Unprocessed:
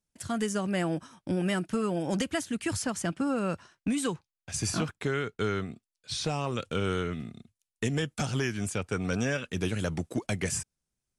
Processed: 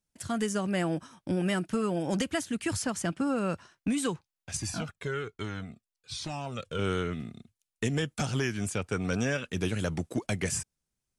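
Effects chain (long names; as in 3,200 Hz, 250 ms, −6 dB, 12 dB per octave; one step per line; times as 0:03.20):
0:04.57–0:06.79: flanger whose copies keep moving one way falling 1.2 Hz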